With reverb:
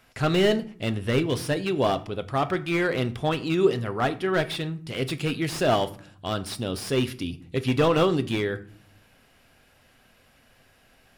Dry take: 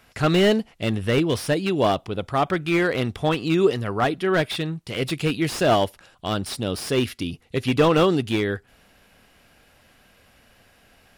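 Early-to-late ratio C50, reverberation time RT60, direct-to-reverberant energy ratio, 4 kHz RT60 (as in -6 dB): 18.0 dB, 0.55 s, 10.0 dB, 0.30 s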